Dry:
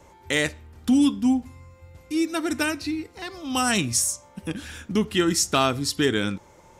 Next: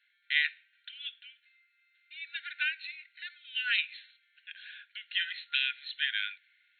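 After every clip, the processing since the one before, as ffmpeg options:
ffmpeg -i in.wav -af "afftfilt=real='re*between(b*sr/4096,1400,4300)':imag='im*between(b*sr/4096,1400,4300)':win_size=4096:overlap=0.75,adynamicequalizer=threshold=0.00891:dfrequency=2500:dqfactor=1.2:tfrequency=2500:tqfactor=1.2:attack=5:release=100:ratio=0.375:range=4:mode=boostabove:tftype=bell,volume=-7.5dB" out.wav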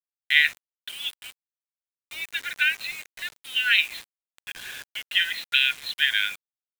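ffmpeg -i in.wav -af "acrusher=bits=7:mix=0:aa=0.000001,volume=9dB" out.wav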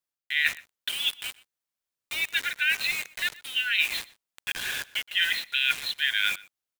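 ffmpeg -i in.wav -filter_complex "[0:a]areverse,acompressor=threshold=-28dB:ratio=8,areverse,asplit=2[link_01][link_02];[link_02]adelay=122.4,volume=-21dB,highshelf=frequency=4000:gain=-2.76[link_03];[link_01][link_03]amix=inputs=2:normalize=0,volume=6.5dB" out.wav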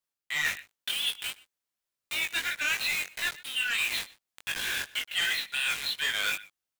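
ffmpeg -i in.wav -af "asoftclip=type=hard:threshold=-25dB,flanger=delay=18.5:depth=3.1:speed=2.8,volume=3.5dB" out.wav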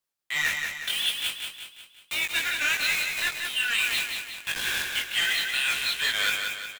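ffmpeg -i in.wav -af "aecho=1:1:181|362|543|724|905|1086:0.562|0.276|0.135|0.0662|0.0324|0.0159,volume=2.5dB" out.wav

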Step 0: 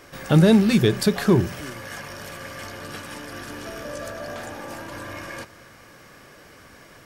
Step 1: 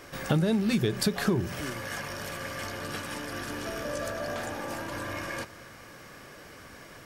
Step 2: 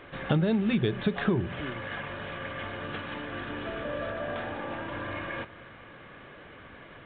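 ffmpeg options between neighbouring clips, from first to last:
ffmpeg -i in.wav -af "acompressor=threshold=-22dB:ratio=10" out.wav
ffmpeg -i in.wav -af "aresample=8000,aresample=44100" out.wav

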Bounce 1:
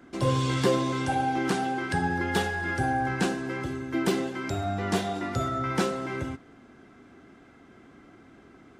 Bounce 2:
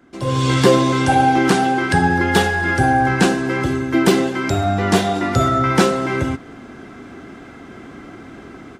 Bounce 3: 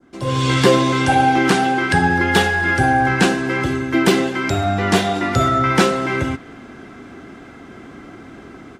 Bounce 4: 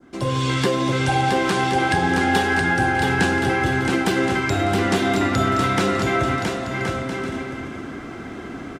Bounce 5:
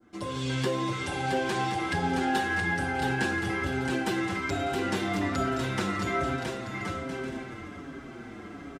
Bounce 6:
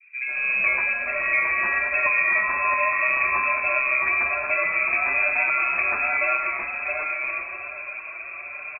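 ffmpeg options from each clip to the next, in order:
ffmpeg -i in.wav -af "dynaudnorm=framelen=250:gausssize=3:maxgain=15.5dB" out.wav
ffmpeg -i in.wav -af "adynamicequalizer=threshold=0.0178:dfrequency=2400:dqfactor=0.79:tfrequency=2400:tqfactor=0.79:attack=5:release=100:ratio=0.375:range=2:mode=boostabove:tftype=bell,volume=-1dB" out.wav
ffmpeg -i in.wav -filter_complex "[0:a]acompressor=threshold=-23dB:ratio=3,asplit=2[link_01][link_02];[link_02]aecho=0:1:670|1072|1313|1458|1545:0.631|0.398|0.251|0.158|0.1[link_03];[link_01][link_03]amix=inputs=2:normalize=0,volume=2.5dB" out.wav
ffmpeg -i in.wav -filter_complex "[0:a]asplit=2[link_01][link_02];[link_02]adelay=6.1,afreqshift=-1.2[link_03];[link_01][link_03]amix=inputs=2:normalize=1,volume=-6dB" out.wav
ffmpeg -i in.wav -filter_complex "[0:a]acrossover=split=910[link_01][link_02];[link_02]adelay=140[link_03];[link_01][link_03]amix=inputs=2:normalize=0,lowpass=frequency=2300:width_type=q:width=0.5098,lowpass=frequency=2300:width_type=q:width=0.6013,lowpass=frequency=2300:width_type=q:width=0.9,lowpass=frequency=2300:width_type=q:width=2.563,afreqshift=-2700,volume=7dB" out.wav

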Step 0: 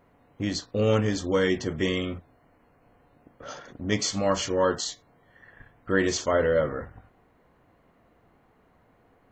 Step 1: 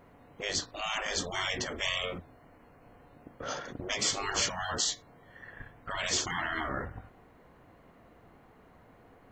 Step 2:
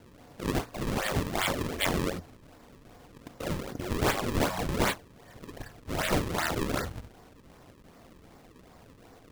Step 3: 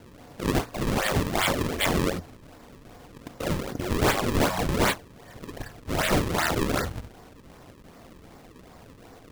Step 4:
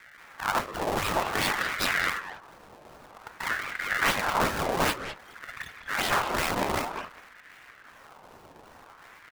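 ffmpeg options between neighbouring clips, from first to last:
ffmpeg -i in.wav -af "afftfilt=real='re*lt(hypot(re,im),0.0891)':imag='im*lt(hypot(re,im),0.0891)':win_size=1024:overlap=0.75,volume=4dB" out.wav
ffmpeg -i in.wav -af "acrusher=samples=35:mix=1:aa=0.000001:lfo=1:lforange=56:lforate=2.6,volume=4dB" out.wav
ffmpeg -i in.wav -af "volume=20.5dB,asoftclip=hard,volume=-20.5dB,volume=5dB" out.wav
ffmpeg -i in.wav -filter_complex "[0:a]asplit=2[link_01][link_02];[link_02]adelay=200,highpass=300,lowpass=3400,asoftclip=type=hard:threshold=-24dB,volume=-6dB[link_03];[link_01][link_03]amix=inputs=2:normalize=0,aeval=exprs='val(0)*sin(2*PI*1200*n/s+1200*0.5/0.53*sin(2*PI*0.53*n/s))':channel_layout=same" out.wav

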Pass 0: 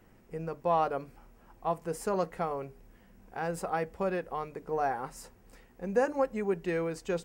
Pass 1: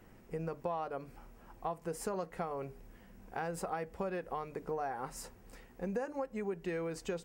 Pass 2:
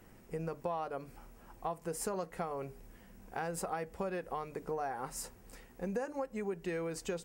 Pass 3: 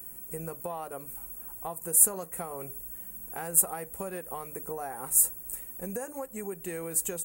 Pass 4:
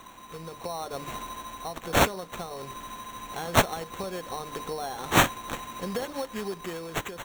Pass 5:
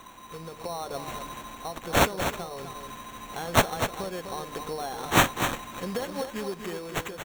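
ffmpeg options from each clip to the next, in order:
ffmpeg -i in.wav -af "acompressor=threshold=-36dB:ratio=6,volume=1.5dB" out.wav
ffmpeg -i in.wav -af "equalizer=frequency=11000:width=0.45:gain=6" out.wav
ffmpeg -i in.wav -af "aexciter=amount=14.4:drive=7.1:freq=7800" out.wav
ffmpeg -i in.wav -af "dynaudnorm=framelen=140:gausssize=11:maxgain=11dB,acrusher=samples=9:mix=1:aa=0.000001,volume=-4.5dB" out.wav
ffmpeg -i in.wav -af "aecho=1:1:249:0.398" out.wav

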